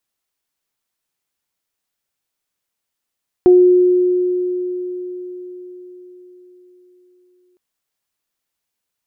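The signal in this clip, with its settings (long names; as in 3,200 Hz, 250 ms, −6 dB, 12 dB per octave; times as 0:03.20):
harmonic partials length 4.11 s, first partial 361 Hz, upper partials −17.5 dB, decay 4.82 s, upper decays 0.32 s, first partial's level −4.5 dB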